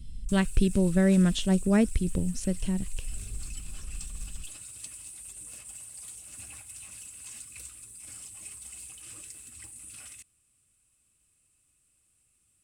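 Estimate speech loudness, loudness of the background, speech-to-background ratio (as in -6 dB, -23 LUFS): -26.0 LUFS, -42.0 LUFS, 16.0 dB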